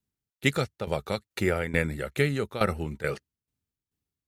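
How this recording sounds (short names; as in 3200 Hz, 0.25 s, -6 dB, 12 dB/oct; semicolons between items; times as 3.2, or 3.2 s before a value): tremolo saw down 2.3 Hz, depth 80%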